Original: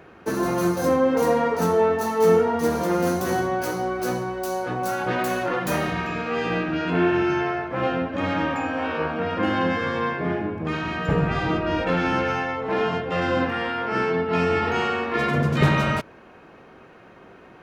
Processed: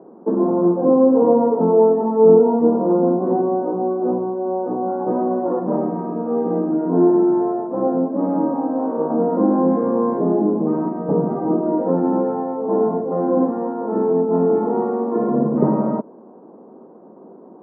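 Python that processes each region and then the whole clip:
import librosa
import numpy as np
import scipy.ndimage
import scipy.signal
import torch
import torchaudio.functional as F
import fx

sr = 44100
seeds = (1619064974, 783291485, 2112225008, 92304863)

y = fx.chain(x, sr, fx.notch(hz=3300.0, q=8.2),
    fx.env_flatten(amount_pct=50), at=(9.1, 10.89))
y = scipy.signal.sosfilt(scipy.signal.ellip(3, 1.0, 60, [210.0, 1000.0], 'bandpass', fs=sr, output='sos'), y)
y = fx.tilt_shelf(y, sr, db=7.5, hz=720.0)
y = F.gain(torch.from_numpy(y), 3.5).numpy()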